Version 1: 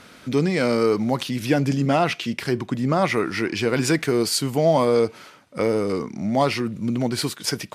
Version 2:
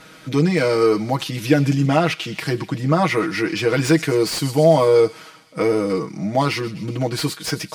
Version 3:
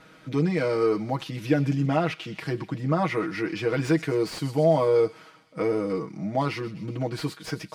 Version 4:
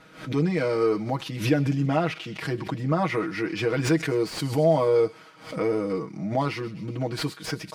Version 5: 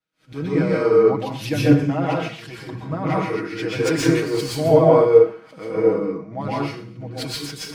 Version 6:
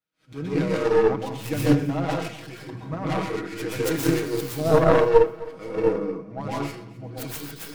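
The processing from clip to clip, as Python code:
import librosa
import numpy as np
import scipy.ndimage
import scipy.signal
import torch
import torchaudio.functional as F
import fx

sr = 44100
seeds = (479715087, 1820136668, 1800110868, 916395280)

y1 = x + 0.93 * np.pad(x, (int(6.3 * sr / 1000.0), 0))[:len(x)]
y1 = fx.echo_wet_highpass(y1, sr, ms=127, feedback_pct=62, hz=2300.0, wet_db=-14.5)
y1 = fx.slew_limit(y1, sr, full_power_hz=390.0)
y2 = fx.high_shelf(y1, sr, hz=3800.0, db=-10.0)
y2 = y2 * librosa.db_to_amplitude(-6.5)
y3 = fx.pre_swell(y2, sr, db_per_s=120.0)
y4 = fx.rev_plate(y3, sr, seeds[0], rt60_s=0.61, hf_ratio=0.75, predelay_ms=110, drr_db=-4.0)
y4 = fx.band_widen(y4, sr, depth_pct=100)
y4 = y4 * librosa.db_to_amplitude(-1.0)
y5 = fx.tracing_dist(y4, sr, depth_ms=0.47)
y5 = fx.echo_feedback(y5, sr, ms=261, feedback_pct=46, wet_db=-20.5)
y5 = y5 * librosa.db_to_amplitude(-4.5)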